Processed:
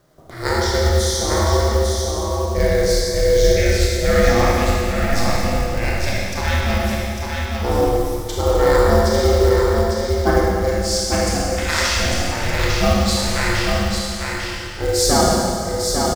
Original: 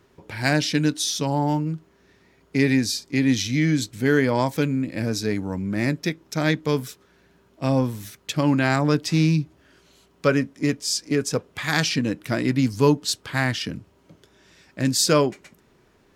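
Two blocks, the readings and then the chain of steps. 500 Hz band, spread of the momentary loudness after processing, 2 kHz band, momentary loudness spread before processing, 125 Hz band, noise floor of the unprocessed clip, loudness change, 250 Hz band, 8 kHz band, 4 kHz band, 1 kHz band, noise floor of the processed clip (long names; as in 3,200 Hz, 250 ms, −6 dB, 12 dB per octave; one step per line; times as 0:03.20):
+8.5 dB, 8 LU, +4.5 dB, 8 LU, +4.0 dB, −60 dBFS, +4.5 dB, −1.0 dB, +6.5 dB, +5.5 dB, +8.5 dB, −27 dBFS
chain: ring modulation 230 Hz
auto-filter notch square 0.14 Hz 430–2,600 Hz
single-tap delay 850 ms −4.5 dB
four-comb reverb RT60 2.3 s, combs from 25 ms, DRR −5 dB
log-companded quantiser 6 bits
level +2 dB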